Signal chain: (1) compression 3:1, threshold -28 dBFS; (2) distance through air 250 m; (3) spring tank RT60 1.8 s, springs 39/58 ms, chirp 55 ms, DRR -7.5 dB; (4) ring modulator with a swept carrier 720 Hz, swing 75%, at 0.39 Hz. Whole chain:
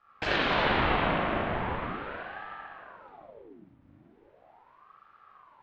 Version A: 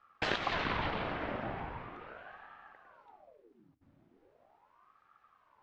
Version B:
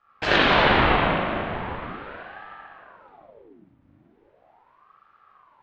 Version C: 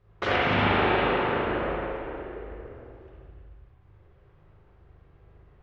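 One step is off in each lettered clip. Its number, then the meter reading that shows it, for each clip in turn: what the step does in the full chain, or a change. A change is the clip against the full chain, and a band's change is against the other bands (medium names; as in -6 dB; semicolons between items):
3, crest factor change +5.0 dB; 1, momentary loudness spread change +4 LU; 4, crest factor change -3.0 dB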